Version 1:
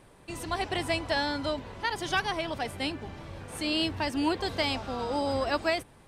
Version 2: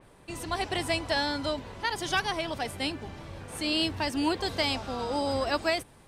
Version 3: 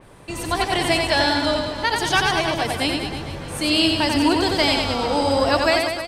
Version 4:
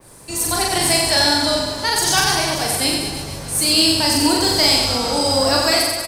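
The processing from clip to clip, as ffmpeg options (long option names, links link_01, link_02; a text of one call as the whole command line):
ffmpeg -i in.wav -af "adynamicequalizer=threshold=0.00708:dfrequency=3800:dqfactor=0.7:tfrequency=3800:tqfactor=0.7:attack=5:release=100:ratio=0.375:range=2:mode=boostabove:tftype=highshelf" out.wav
ffmpeg -i in.wav -af "aecho=1:1:90|193.5|312.5|449.4|606.8:0.631|0.398|0.251|0.158|0.1,volume=8dB" out.wav
ffmpeg -i in.wav -filter_complex "[0:a]asplit=2[link_01][link_02];[link_02]adelay=41,volume=-2dB[link_03];[link_01][link_03]amix=inputs=2:normalize=0,acrossover=split=210|1700[link_04][link_05][link_06];[link_06]aexciter=amount=3.4:drive=7.9:freq=4400[link_07];[link_04][link_05][link_07]amix=inputs=3:normalize=0,volume=-2dB" out.wav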